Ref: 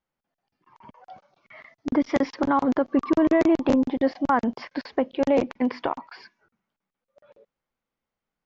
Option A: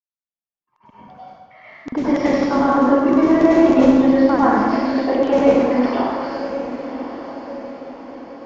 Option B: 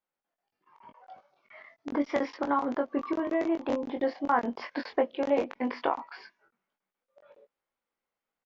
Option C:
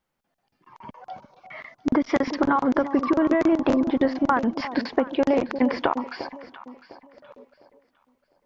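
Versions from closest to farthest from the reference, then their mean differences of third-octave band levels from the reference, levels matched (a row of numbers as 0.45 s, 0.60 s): B, C, A; 3.0 dB, 4.0 dB, 7.5 dB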